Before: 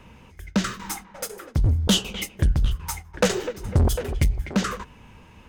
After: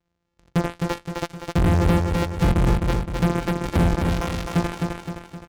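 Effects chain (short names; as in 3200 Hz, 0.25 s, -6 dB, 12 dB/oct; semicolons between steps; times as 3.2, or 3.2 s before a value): sample sorter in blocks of 256 samples; 4.09–4.52 HPF 600 Hz 12 dB/oct; treble ducked by the level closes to 1300 Hz, closed at -17 dBFS; steep low-pass 7500 Hz; AGC gain up to 11.5 dB; added harmonics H 3 -10 dB, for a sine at -14 dBFS; feedback echo 0.259 s, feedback 49%, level -4 dB; gain -4 dB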